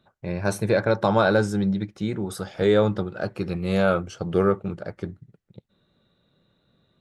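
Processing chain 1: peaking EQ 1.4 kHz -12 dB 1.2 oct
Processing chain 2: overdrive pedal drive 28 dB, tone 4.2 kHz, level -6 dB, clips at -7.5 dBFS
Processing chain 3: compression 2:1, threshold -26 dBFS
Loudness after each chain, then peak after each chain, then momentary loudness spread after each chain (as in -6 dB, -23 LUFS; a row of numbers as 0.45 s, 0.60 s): -25.5 LUFS, -17.5 LUFS, -29.0 LUFS; -9.5 dBFS, -7.5 dBFS, -12.0 dBFS; 12 LU, 8 LU, 9 LU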